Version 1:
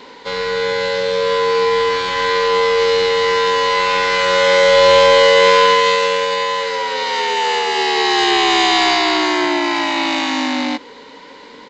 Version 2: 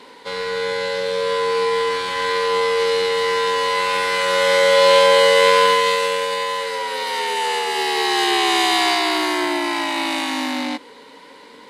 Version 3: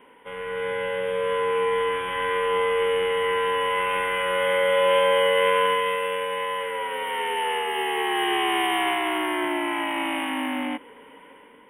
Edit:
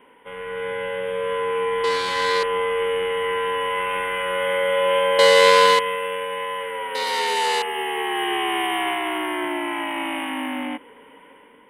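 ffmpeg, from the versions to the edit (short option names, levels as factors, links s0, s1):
-filter_complex "[1:a]asplit=3[s0][s1][s2];[2:a]asplit=4[s3][s4][s5][s6];[s3]atrim=end=1.842[s7];[s0]atrim=start=1.838:end=2.432[s8];[s4]atrim=start=2.428:end=5.192[s9];[s1]atrim=start=5.188:end=5.792[s10];[s5]atrim=start=5.788:end=6.952[s11];[s2]atrim=start=6.948:end=7.622[s12];[s6]atrim=start=7.618[s13];[s7][s8]acrossfade=d=0.004:c1=hsin:c2=hsin[s14];[s14][s9]acrossfade=d=0.004:c1=hsin:c2=hsin[s15];[s15][s10]acrossfade=d=0.004:c1=hsin:c2=hsin[s16];[s16][s11]acrossfade=d=0.004:c1=hsin:c2=hsin[s17];[s17][s12]acrossfade=d=0.004:c1=hsin:c2=hsin[s18];[s18][s13]acrossfade=d=0.004:c1=hsin:c2=hsin"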